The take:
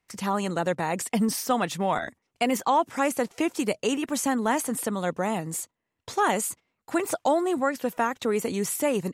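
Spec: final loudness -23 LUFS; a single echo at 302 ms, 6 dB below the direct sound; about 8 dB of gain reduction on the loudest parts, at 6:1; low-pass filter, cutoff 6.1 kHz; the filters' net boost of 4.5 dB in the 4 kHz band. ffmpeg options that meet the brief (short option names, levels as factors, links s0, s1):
-af "lowpass=6100,equalizer=f=4000:t=o:g=7,acompressor=threshold=0.0447:ratio=6,aecho=1:1:302:0.501,volume=2.66"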